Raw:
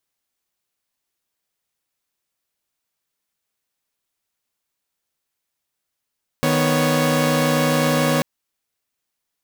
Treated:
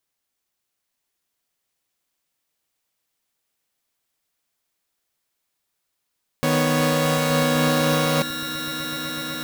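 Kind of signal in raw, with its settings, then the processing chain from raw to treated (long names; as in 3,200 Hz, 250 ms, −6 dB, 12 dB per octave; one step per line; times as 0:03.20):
held notes D#3/B3/C#5 saw, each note −18 dBFS 1.79 s
brickwall limiter −11.5 dBFS
on a send: echo that builds up and dies away 125 ms, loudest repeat 8, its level −12 dB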